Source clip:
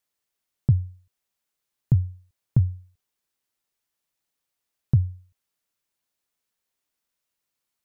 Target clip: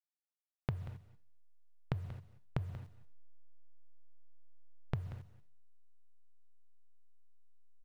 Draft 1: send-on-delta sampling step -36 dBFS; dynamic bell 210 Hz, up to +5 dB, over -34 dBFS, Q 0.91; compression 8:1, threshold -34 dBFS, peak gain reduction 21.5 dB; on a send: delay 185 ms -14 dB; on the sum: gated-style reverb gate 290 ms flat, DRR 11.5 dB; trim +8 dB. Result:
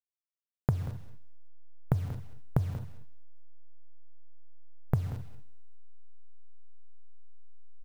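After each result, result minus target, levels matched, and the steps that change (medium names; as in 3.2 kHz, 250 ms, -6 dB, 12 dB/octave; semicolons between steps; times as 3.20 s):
compression: peak gain reduction -9.5 dB; send-on-delta sampling: distortion +12 dB
change: compression 8:1, threshold -45 dBFS, peak gain reduction 31.5 dB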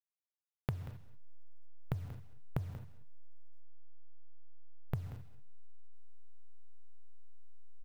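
send-on-delta sampling: distortion +12 dB
change: send-on-delta sampling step -46 dBFS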